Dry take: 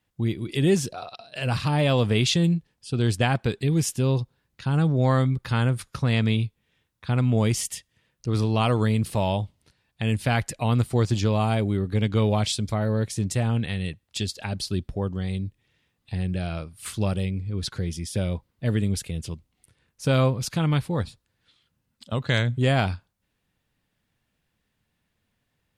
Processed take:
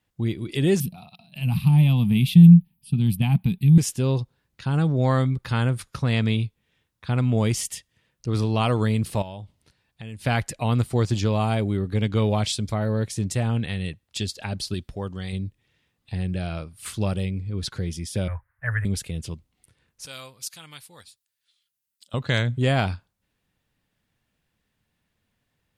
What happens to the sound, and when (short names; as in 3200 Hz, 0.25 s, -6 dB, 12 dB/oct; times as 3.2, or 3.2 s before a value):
0.8–3.78 EQ curve 110 Hz 0 dB, 180 Hz +14 dB, 380 Hz -16 dB, 530 Hz -22 dB, 840 Hz -6 dB, 1600 Hz -20 dB, 2400 Hz -3 dB, 3700 Hz -7 dB, 6800 Hz -20 dB, 12000 Hz +14 dB
9.22–10.25 compressor 3:1, threshold -38 dBFS
14.74–15.33 tilt shelf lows -4.5 dB, about 1100 Hz
18.28–18.85 EQ curve 110 Hz 0 dB, 200 Hz -29 dB, 390 Hz -22 dB, 550 Hz -8 dB, 1100 Hz +4 dB, 1700 Hz +15 dB, 3700 Hz -29 dB, 6700 Hz -27 dB, 9700 Hz -3 dB
20.06–22.14 pre-emphasis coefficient 0.97